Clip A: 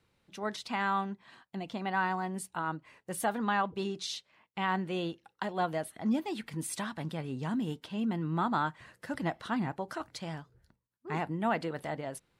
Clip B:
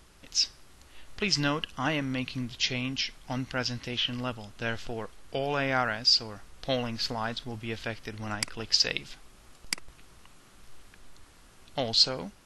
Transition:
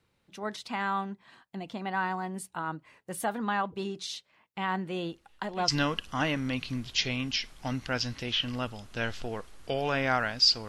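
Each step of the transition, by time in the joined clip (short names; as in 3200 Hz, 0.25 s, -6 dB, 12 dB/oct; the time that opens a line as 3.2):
clip A
5.11 add clip B from 0.76 s 0.57 s -16.5 dB
5.68 switch to clip B from 1.33 s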